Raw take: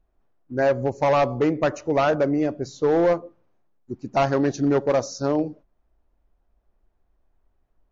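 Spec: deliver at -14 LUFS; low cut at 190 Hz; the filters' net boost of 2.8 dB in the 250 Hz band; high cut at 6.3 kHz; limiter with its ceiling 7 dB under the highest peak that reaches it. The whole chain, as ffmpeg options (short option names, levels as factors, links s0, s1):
-af "highpass=190,lowpass=6300,equalizer=f=250:t=o:g=4.5,volume=3.98,alimiter=limit=0.668:level=0:latency=1"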